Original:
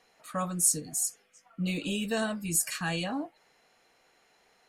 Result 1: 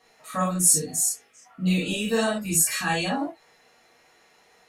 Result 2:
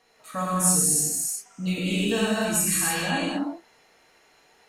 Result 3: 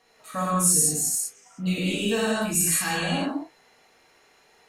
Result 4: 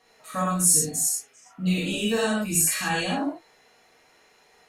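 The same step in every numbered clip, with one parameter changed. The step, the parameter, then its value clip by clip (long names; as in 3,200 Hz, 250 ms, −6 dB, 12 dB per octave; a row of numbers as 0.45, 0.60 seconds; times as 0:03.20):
reverb whose tail is shaped and stops, gate: 80, 350, 230, 140 milliseconds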